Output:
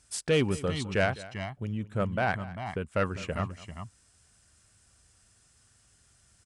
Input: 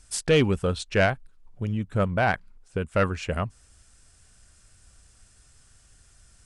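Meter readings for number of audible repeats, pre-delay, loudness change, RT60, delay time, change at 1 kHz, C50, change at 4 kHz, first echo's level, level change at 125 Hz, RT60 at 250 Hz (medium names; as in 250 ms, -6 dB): 2, no reverb, -5.0 dB, no reverb, 207 ms, -4.5 dB, no reverb, -4.0 dB, -18.5 dB, -5.0 dB, no reverb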